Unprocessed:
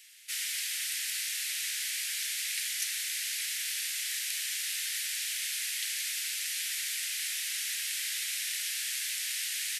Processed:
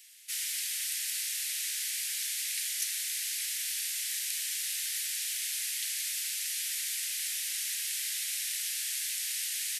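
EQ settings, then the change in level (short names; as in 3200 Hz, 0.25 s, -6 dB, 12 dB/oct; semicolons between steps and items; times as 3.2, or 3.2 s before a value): high shelf 3900 Hz +8.5 dB; -6.0 dB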